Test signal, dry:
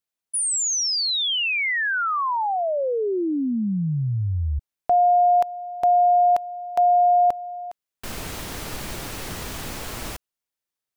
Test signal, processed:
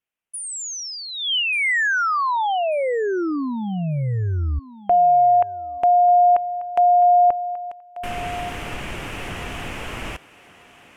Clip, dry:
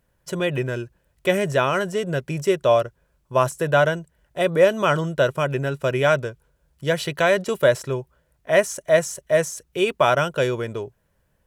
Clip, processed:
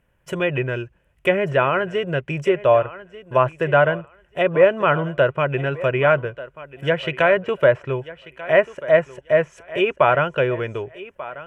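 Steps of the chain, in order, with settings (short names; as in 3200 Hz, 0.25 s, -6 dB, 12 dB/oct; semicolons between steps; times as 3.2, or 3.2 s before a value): resonant high shelf 3400 Hz -6.5 dB, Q 3; treble ducked by the level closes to 2000 Hz, closed at -16.5 dBFS; thinning echo 1.189 s, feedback 19%, high-pass 300 Hz, level -16 dB; dynamic EQ 220 Hz, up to -5 dB, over -39 dBFS, Q 2; gain +2 dB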